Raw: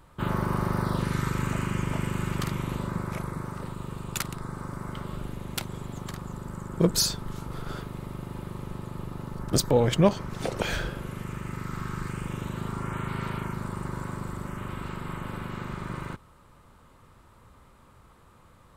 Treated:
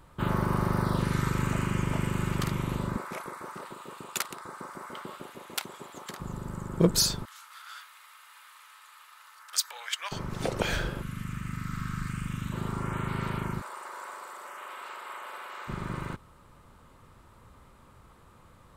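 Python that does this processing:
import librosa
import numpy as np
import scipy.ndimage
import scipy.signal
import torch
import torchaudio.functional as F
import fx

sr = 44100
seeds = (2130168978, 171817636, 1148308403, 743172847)

y = fx.filter_lfo_highpass(x, sr, shape='saw_up', hz=6.7, low_hz=240.0, high_hz=1600.0, q=1.0, at=(2.96, 6.2))
y = fx.highpass(y, sr, hz=1300.0, slope=24, at=(7.25, 10.12))
y = fx.band_shelf(y, sr, hz=560.0, db=-15.0, octaves=1.7, at=(11.02, 12.52))
y = fx.highpass(y, sr, hz=560.0, slope=24, at=(13.6, 15.67), fade=0.02)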